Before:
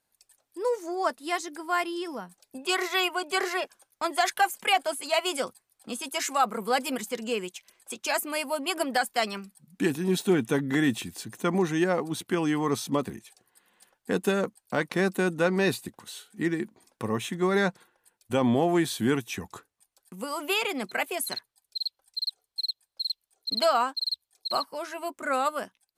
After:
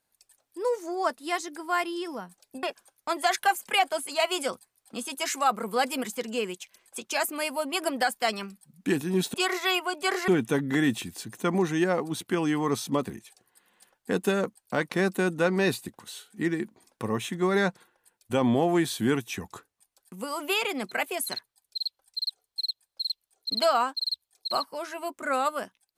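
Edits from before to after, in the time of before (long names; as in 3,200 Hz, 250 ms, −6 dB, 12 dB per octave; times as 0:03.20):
0:02.63–0:03.57: move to 0:10.28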